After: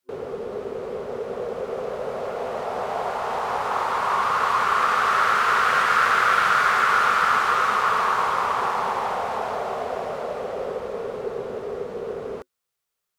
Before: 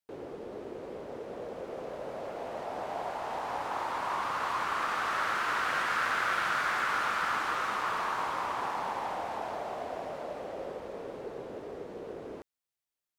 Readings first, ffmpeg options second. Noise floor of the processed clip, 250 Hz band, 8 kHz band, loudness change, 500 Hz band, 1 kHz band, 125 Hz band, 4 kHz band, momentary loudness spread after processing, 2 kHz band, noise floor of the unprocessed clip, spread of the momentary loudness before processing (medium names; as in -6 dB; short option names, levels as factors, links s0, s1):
-81 dBFS, +6.0 dB, +8.5 dB, +10.5 dB, +10.5 dB, +11.0 dB, +8.5 dB, +8.5 dB, 13 LU, +9.5 dB, under -85 dBFS, 13 LU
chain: -af "superequalizer=6b=0.355:7b=1.58:10b=1.58,volume=2.66"